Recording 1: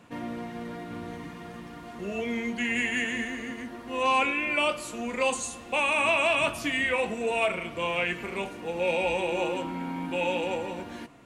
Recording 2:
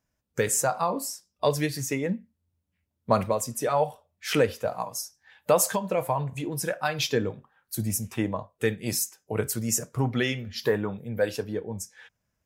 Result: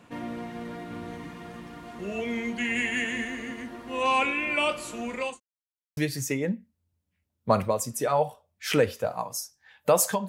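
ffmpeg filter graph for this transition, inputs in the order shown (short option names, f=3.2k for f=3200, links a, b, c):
-filter_complex "[0:a]apad=whole_dur=10.28,atrim=end=10.28,asplit=2[a][b];[a]atrim=end=5.4,asetpts=PTS-STARTPTS,afade=t=out:st=4.97:d=0.43:c=qsin[c];[b]atrim=start=5.4:end=5.97,asetpts=PTS-STARTPTS,volume=0[d];[1:a]atrim=start=1.58:end=5.89,asetpts=PTS-STARTPTS,afade=t=in:d=0.004:c=hsin[e];[c][d][e]concat=n=3:v=0:a=1"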